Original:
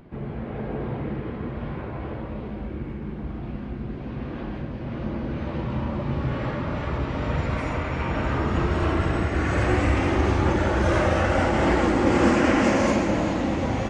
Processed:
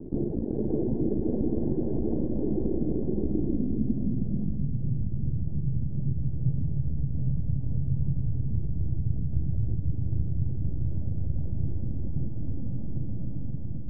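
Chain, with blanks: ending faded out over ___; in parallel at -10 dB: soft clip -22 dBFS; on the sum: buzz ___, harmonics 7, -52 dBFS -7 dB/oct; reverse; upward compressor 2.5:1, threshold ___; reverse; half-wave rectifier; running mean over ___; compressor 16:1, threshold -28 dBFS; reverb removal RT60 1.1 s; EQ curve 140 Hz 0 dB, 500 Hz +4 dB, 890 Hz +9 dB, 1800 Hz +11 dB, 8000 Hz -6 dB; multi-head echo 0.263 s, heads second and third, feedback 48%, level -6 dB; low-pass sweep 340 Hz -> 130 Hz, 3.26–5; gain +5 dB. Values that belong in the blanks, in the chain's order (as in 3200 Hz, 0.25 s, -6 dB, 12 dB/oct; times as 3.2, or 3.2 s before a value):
1.13 s, 50 Hz, -30 dBFS, 36 samples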